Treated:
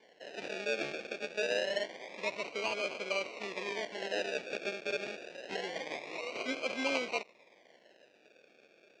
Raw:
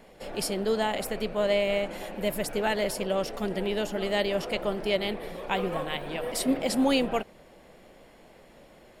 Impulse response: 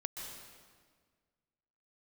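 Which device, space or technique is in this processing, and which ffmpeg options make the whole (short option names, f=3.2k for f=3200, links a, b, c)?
circuit-bent sampling toy: -af "acrusher=samples=34:mix=1:aa=0.000001:lfo=1:lforange=20.4:lforate=0.26,highpass=450,equalizer=f=850:t=q:w=4:g=-5,equalizer=f=1.3k:t=q:w=4:g=-9,equalizer=f=2.4k:t=q:w=4:g=9,lowpass=f=5.8k:w=0.5412,lowpass=f=5.8k:w=1.3066,volume=-5.5dB"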